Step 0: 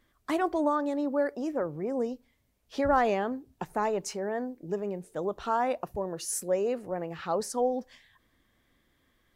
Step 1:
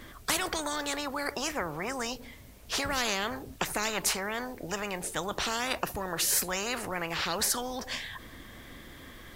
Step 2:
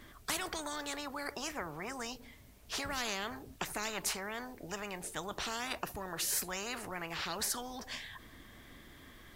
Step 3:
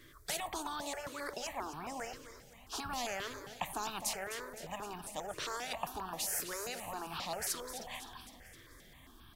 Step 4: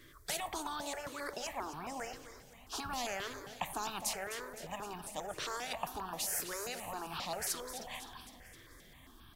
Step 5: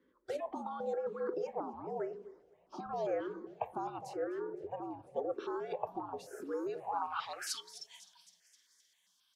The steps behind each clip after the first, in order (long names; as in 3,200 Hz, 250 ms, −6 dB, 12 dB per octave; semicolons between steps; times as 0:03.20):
every bin compressed towards the loudest bin 4 to 1
notch filter 520 Hz, Q 12; level −7 dB
on a send: repeating echo 257 ms, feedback 59%, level −11 dB; on the sum: dynamic equaliser 770 Hz, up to +6 dB, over −54 dBFS, Q 1; step-sequenced phaser 7.5 Hz 210–2,000 Hz; level −1 dB
convolution reverb RT60 2.2 s, pre-delay 3 ms, DRR 19 dB
frequency shifter −73 Hz; noise reduction from a noise print of the clip's start 12 dB; band-pass filter sweep 450 Hz → 5,900 Hz, 0:06.66–0:07.81; level +11.5 dB